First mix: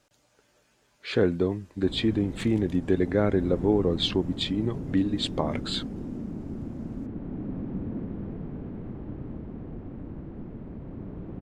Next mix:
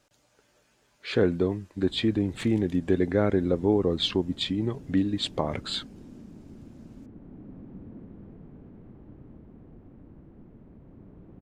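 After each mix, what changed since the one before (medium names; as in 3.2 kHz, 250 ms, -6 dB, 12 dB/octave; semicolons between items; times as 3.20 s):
background -11.0 dB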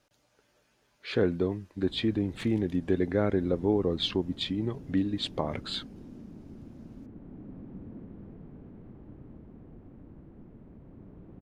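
speech -3.0 dB; master: add peaking EQ 7.7 kHz -6 dB 0.37 oct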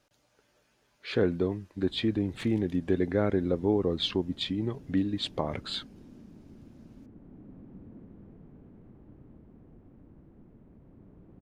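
background -4.5 dB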